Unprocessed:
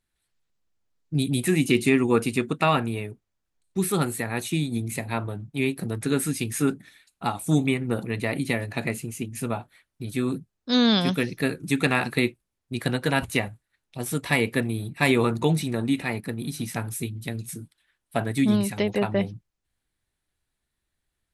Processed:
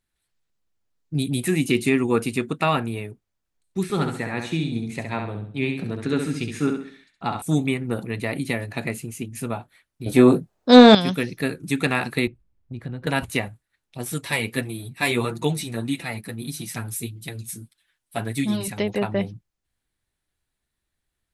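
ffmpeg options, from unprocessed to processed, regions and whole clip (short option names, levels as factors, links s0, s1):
-filter_complex "[0:a]asettb=1/sr,asplit=3[s0][s1][s2];[s0]atrim=end=3.834[s3];[s1]atrim=start=3.83:end=7.42,asetpts=PTS-STARTPTS,afade=t=in:d=0.004:c=qsin,afade=t=out:st=3.586:d=0.004:c=qsin,lowpass=4900,aecho=1:1:67|134|201|268|335:0.501|0.195|0.0762|0.0297|0.0116,atrim=end_sample=158319[s4];[s2]atrim=start=7.416[s5];[s3][s4]acrossfade=d=0.004:c1=hsin:c2=qsin[s6];[s6][s5]acrossfade=d=0.004:c1=qsin:c2=hsin,asettb=1/sr,asplit=3[s7][s8][s9];[s7]atrim=end=10.064[s10];[s8]atrim=start=10.06:end=10.95,asetpts=PTS-STARTPTS,afade=t=in:d=0.004:c=qsin,afade=t=out:st=0.886:d=0.004:c=qsin,equalizer=f=650:w=0.72:g=14,acontrast=48,asplit=2[s11][s12];[s12]adelay=24,volume=0.299[s13];[s11][s13]amix=inputs=2:normalize=0,atrim=end_sample=39249[s14];[s9]atrim=start=10.946[s15];[s10][s14]acrossfade=d=0.004:c1=hsin:c2=qsin[s16];[s16][s15]acrossfade=d=0.004:c1=qsin:c2=hsin,asettb=1/sr,asplit=3[s17][s18][s19];[s17]atrim=end=12.274[s20];[s18]atrim=start=12.27:end=13.07,asetpts=PTS-STARTPTS,afade=t=in:d=0.004:c=qsin,afade=t=out:st=0.796:d=0.004:c=qsin,aemphasis=mode=reproduction:type=riaa,acompressor=threshold=0.0158:ratio=2.5:attack=3.2:release=140:knee=1:detection=peak[s21];[s19]atrim=start=13.066[s22];[s20][s21]acrossfade=d=0.004:c1=hsin:c2=qsin[s23];[s23][s22]acrossfade=d=0.004:c1=qsin:c2=hsin,asettb=1/sr,asplit=3[s24][s25][s26];[s24]atrim=end=14.124[s27];[s25]atrim=start=14.12:end=18.68,asetpts=PTS-STARTPTS,afade=t=in:d=0.004:c=qsin,afade=t=out:st=4.556:d=0.004:c=qsin,highshelf=f=2700:g=7,flanger=delay=5.8:depth=4.1:regen=0:speed=1.6:shape=sinusoidal[s28];[s26]atrim=start=18.676[s29];[s27][s28]acrossfade=d=0.004:c1=hsin:c2=qsin[s30];[s30][s29]acrossfade=d=0.004:c1=qsin:c2=hsin"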